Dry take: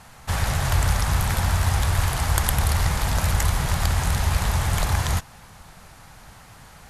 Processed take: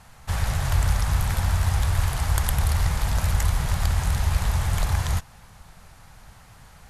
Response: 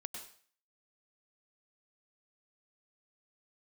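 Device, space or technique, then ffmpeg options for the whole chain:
low shelf boost with a cut just above: -af "lowshelf=f=100:g=6.5,equalizer=f=300:t=o:w=0.77:g=-2.5,volume=0.596"

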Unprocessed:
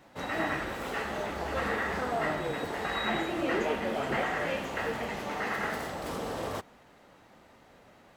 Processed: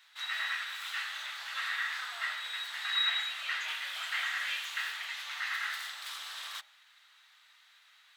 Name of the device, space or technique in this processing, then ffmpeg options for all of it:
headphones lying on a table: -filter_complex "[0:a]highpass=f=1400:w=0.5412,highpass=f=1400:w=1.3066,equalizer=f=3700:t=o:w=0.51:g=10,bandreject=f=67.99:t=h:w=4,bandreject=f=135.98:t=h:w=4,bandreject=f=203.97:t=h:w=4,bandreject=f=271.96:t=h:w=4,bandreject=f=339.95:t=h:w=4,bandreject=f=407.94:t=h:w=4,bandreject=f=475.93:t=h:w=4,bandreject=f=543.92:t=h:w=4,bandreject=f=611.91:t=h:w=4,bandreject=f=679.9:t=h:w=4,bandreject=f=747.89:t=h:w=4,bandreject=f=815.88:t=h:w=4,bandreject=f=883.87:t=h:w=4,asettb=1/sr,asplit=3[s0][s1][s2];[s0]atrim=end=3.684[s3];[s1]atrim=start=3.68:end=4.93,asetpts=PTS-STARTPTS,afade=t=in:d=0.004:c=qsin,afade=t=out:st=1.246:d=0.004:c=qsin,highshelf=f=5500:g=5[s4];[s2]atrim=start=4.926[s5];[s3][s4]acrossfade=d=0.004:c1=hsin:c2=qsin[s6];[s6][s5]acrossfade=d=0.004:c1=qsin:c2=hsin"

